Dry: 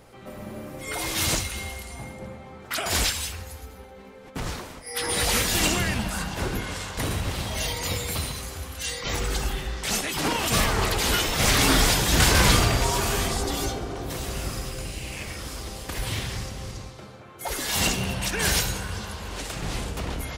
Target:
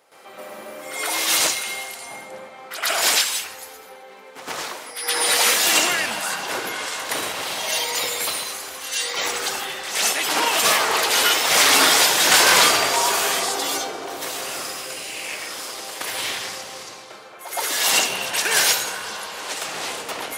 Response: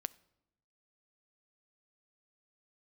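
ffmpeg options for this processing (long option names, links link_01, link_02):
-filter_complex "[0:a]highpass=540,asplit=2[link_01][link_02];[1:a]atrim=start_sample=2205,adelay=118[link_03];[link_02][link_03]afir=irnorm=-1:irlink=0,volume=12.5dB[link_04];[link_01][link_04]amix=inputs=2:normalize=0,volume=-4dB"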